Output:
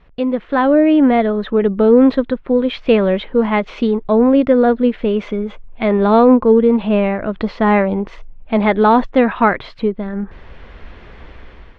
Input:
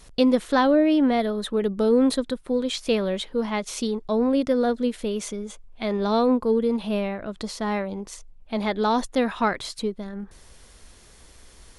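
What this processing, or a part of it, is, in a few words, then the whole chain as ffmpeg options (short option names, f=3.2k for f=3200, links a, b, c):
action camera in a waterproof case: -af "lowpass=f=2.7k:w=0.5412,lowpass=f=2.7k:w=1.3066,dynaudnorm=f=240:g=5:m=15dB" -ar 24000 -c:a aac -b:a 96k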